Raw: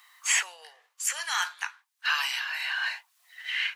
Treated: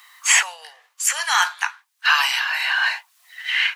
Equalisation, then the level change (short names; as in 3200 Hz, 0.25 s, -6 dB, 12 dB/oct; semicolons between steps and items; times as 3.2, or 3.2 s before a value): HPF 580 Hz 12 dB/oct; dynamic EQ 790 Hz, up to +6 dB, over -44 dBFS, Q 1.1; +8.5 dB